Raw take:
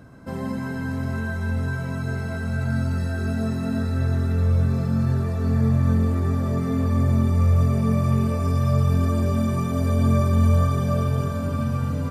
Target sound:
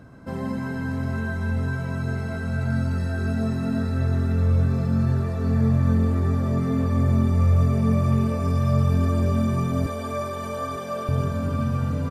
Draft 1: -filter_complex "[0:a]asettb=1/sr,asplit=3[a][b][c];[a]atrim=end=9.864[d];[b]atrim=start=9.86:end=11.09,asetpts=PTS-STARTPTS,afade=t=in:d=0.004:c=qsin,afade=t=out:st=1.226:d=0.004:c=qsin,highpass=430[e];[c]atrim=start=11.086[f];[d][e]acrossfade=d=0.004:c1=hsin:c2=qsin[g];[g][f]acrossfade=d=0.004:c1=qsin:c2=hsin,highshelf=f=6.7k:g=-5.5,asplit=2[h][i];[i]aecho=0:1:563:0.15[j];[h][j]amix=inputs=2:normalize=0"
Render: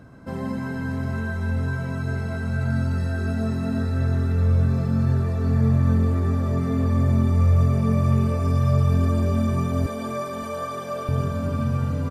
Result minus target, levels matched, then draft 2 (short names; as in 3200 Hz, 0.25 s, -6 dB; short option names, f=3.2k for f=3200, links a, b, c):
echo 0.338 s early
-filter_complex "[0:a]asettb=1/sr,asplit=3[a][b][c];[a]atrim=end=9.864[d];[b]atrim=start=9.86:end=11.09,asetpts=PTS-STARTPTS,afade=t=in:d=0.004:c=qsin,afade=t=out:st=1.226:d=0.004:c=qsin,highpass=430[e];[c]atrim=start=11.086[f];[d][e]acrossfade=d=0.004:c1=hsin:c2=qsin[g];[g][f]acrossfade=d=0.004:c1=qsin:c2=hsin,highshelf=f=6.7k:g=-5.5,asplit=2[h][i];[i]aecho=0:1:901:0.15[j];[h][j]amix=inputs=2:normalize=0"